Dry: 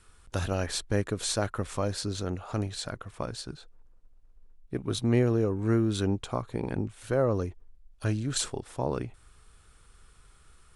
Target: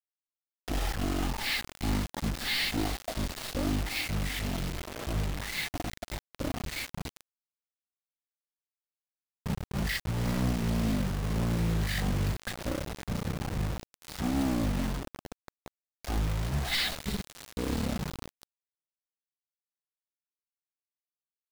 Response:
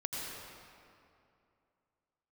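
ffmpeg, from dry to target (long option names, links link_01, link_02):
-filter_complex "[0:a]asoftclip=type=hard:threshold=-26.5dB,bandreject=frequency=60:width_type=h:width=6,bandreject=frequency=120:width_type=h:width=6,bandreject=frequency=180:width_type=h:width=6,bandreject=frequency=240:width_type=h:width=6,asplit=2[link_01][link_02];[1:a]atrim=start_sample=2205,asetrate=25578,aresample=44100,highshelf=frequency=4600:gain=6[link_03];[link_02][link_03]afir=irnorm=-1:irlink=0,volume=-19.5dB[link_04];[link_01][link_04]amix=inputs=2:normalize=0,asetrate=22050,aresample=44100,acrusher=bits=5:mix=0:aa=0.000001"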